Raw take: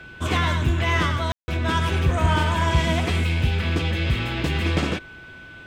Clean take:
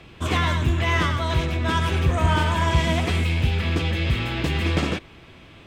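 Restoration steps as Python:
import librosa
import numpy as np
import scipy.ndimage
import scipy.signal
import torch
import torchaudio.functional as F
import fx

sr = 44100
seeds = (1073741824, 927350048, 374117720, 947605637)

y = fx.notch(x, sr, hz=1500.0, q=30.0)
y = fx.fix_ambience(y, sr, seeds[0], print_start_s=4.99, print_end_s=5.49, start_s=1.32, end_s=1.48)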